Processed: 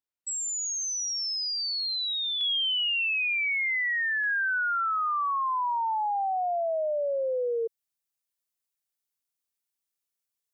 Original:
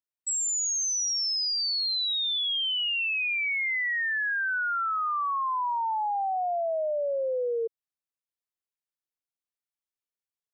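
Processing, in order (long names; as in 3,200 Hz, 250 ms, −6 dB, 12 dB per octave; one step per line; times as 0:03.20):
high-shelf EQ 4,300 Hz −4.5 dB, from 0:02.41 +3.5 dB, from 0:04.24 +10 dB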